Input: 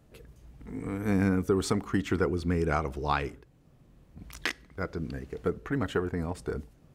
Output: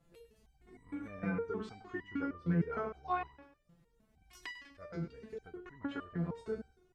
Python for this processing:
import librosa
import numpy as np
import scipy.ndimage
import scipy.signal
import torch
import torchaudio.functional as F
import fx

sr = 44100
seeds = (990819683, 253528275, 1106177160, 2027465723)

y = fx.env_lowpass_down(x, sr, base_hz=2300.0, full_db=-26.0)
y = fx.echo_feedback(y, sr, ms=98, feedback_pct=36, wet_db=-11)
y = fx.resonator_held(y, sr, hz=6.5, low_hz=170.0, high_hz=990.0)
y = y * 10.0 ** (5.5 / 20.0)